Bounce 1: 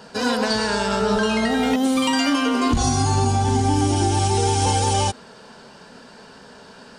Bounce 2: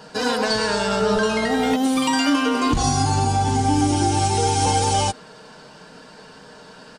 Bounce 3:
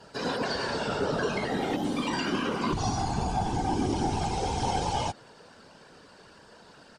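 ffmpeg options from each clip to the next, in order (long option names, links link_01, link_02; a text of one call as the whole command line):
ffmpeg -i in.wav -af "aecho=1:1:6.5:0.41" out.wav
ffmpeg -i in.wav -filter_complex "[0:a]afftfilt=real='hypot(re,im)*cos(2*PI*random(0))':imag='hypot(re,im)*sin(2*PI*random(1))':win_size=512:overlap=0.75,acrossover=split=6100[link_01][link_02];[link_02]acompressor=threshold=-52dB:ratio=4:attack=1:release=60[link_03];[link_01][link_03]amix=inputs=2:normalize=0,volume=-3dB" out.wav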